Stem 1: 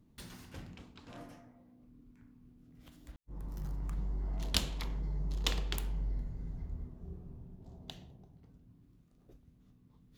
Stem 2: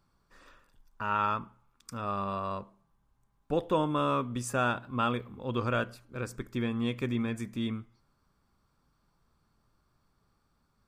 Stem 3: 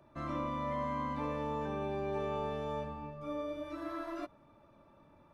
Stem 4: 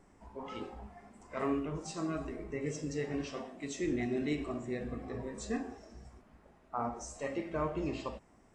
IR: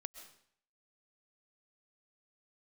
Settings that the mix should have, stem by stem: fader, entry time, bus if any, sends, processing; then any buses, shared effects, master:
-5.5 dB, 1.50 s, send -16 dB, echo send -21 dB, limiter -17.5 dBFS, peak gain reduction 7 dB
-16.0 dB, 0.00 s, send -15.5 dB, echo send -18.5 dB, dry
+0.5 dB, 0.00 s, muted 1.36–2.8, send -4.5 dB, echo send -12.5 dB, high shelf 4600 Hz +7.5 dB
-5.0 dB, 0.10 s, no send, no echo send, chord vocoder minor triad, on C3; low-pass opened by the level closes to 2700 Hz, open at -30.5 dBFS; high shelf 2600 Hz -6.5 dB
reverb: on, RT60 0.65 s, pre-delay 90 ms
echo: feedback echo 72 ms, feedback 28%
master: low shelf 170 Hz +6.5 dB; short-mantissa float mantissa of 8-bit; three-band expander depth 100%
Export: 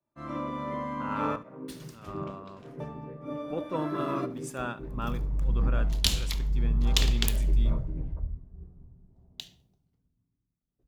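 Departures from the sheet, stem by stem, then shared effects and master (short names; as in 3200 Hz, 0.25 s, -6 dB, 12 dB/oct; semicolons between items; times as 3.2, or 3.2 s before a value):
stem 1 -5.5 dB -> +3.0 dB; stem 2 -16.0 dB -> -8.5 dB; reverb return -9.5 dB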